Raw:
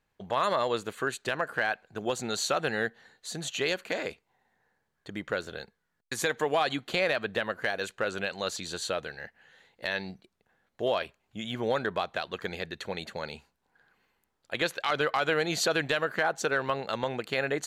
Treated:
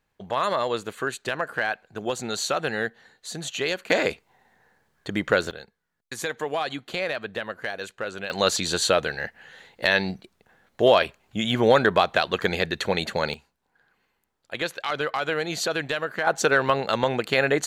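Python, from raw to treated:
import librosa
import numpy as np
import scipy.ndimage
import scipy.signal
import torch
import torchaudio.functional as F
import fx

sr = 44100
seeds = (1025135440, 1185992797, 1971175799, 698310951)

y = fx.gain(x, sr, db=fx.steps((0.0, 2.5), (3.9, 10.5), (5.51, -1.0), (8.3, 11.0), (13.34, 0.5), (16.27, 8.0)))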